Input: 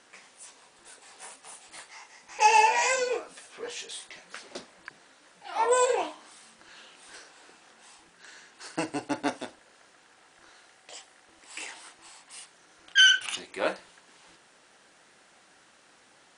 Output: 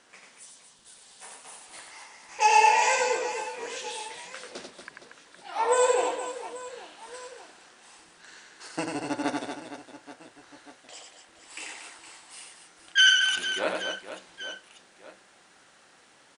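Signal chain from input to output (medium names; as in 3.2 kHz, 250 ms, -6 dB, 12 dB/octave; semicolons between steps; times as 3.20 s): time-frequency box 0.37–1.21 s, 240–2800 Hz -8 dB; reverse bouncing-ball echo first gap 90 ms, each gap 1.6×, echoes 5; trim -1 dB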